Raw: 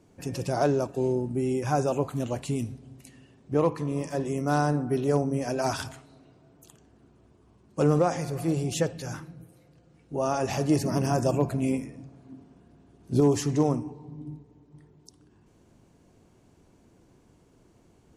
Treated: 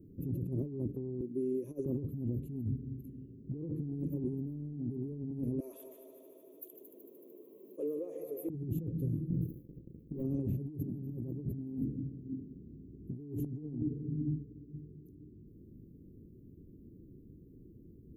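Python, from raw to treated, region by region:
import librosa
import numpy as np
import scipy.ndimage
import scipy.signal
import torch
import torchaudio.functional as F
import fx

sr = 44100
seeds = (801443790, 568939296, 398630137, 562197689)

y = fx.chain(x, sr, fx.highpass(hz=570.0, slope=12),
    fx.peak_eq(hz=5900.0, db=13.0, octaves=0.24),
    fx.over_compress(threshold_db=-30.0, ratio=-0.5), at=(1.21, 1.86))
y = fx.chain(y, sr, fx.highpass(hz=570.0, slope=24),
    fx.echo_heads(ms=75, heads='second and third', feedback_pct=56, wet_db=-15.0),
    fx.env_flatten(amount_pct=50), at=(5.6, 8.5))
y = fx.chain(y, sr, fx.leveller(passes=3),
    fx.hum_notches(base_hz=50, count=3), at=(9.3, 10.23))
y = scipy.signal.sosfilt(scipy.signal.cheby2(4, 40, [720.0, 9300.0], 'bandstop', fs=sr, output='sos'), y)
y = fx.dynamic_eq(y, sr, hz=700.0, q=0.98, threshold_db=-47.0, ratio=4.0, max_db=-6)
y = fx.over_compress(y, sr, threshold_db=-37.0, ratio=-1.0)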